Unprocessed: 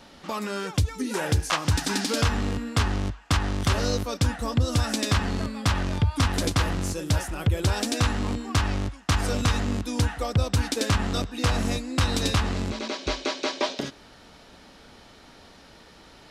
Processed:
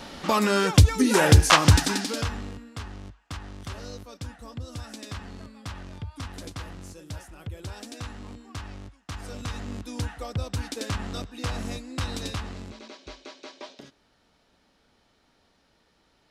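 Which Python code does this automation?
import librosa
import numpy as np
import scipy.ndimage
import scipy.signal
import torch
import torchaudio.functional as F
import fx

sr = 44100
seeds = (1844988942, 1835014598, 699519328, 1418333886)

y = fx.gain(x, sr, db=fx.line((1.66, 8.5), (1.98, -1.5), (2.71, -14.0), (9.12, -14.0), (9.88, -7.0), (12.09, -7.0), (13.16, -15.5)))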